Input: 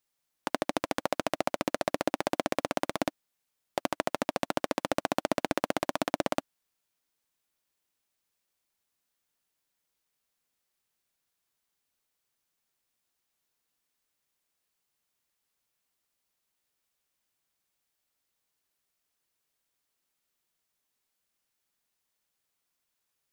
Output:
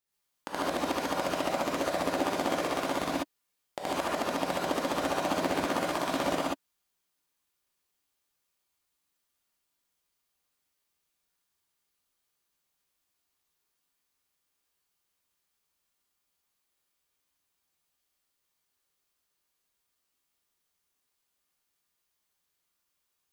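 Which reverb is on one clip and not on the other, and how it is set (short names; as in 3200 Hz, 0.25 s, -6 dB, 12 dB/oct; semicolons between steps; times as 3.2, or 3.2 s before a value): non-linear reverb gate 0.16 s rising, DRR -8 dB; gain -7 dB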